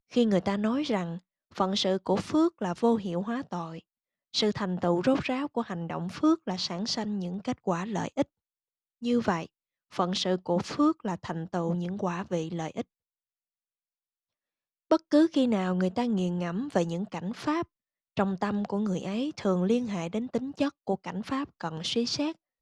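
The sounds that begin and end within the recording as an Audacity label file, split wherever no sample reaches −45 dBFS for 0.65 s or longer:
9.020000	12.820000	sound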